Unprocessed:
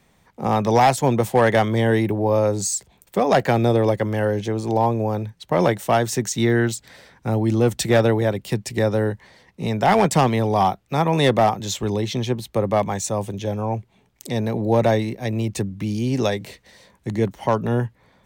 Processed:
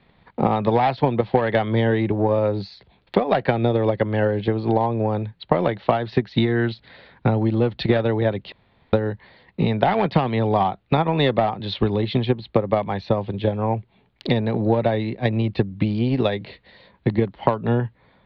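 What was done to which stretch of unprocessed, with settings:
8.52–8.93 room tone
whole clip: steep low-pass 4400 Hz 72 dB/oct; transient shaper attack +11 dB, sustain -1 dB; compressor 6:1, threshold -16 dBFS; gain +1 dB

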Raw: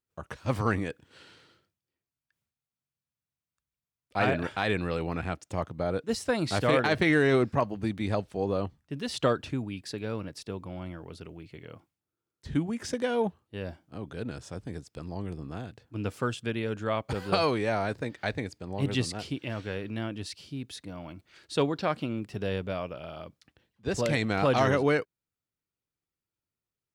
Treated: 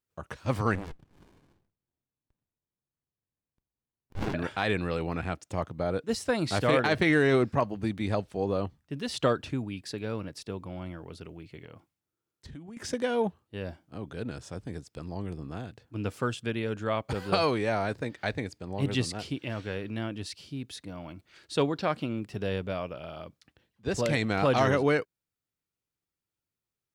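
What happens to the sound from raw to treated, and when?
0.75–4.34 running maximum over 65 samples
11.64–12.77 compressor, threshold -42 dBFS

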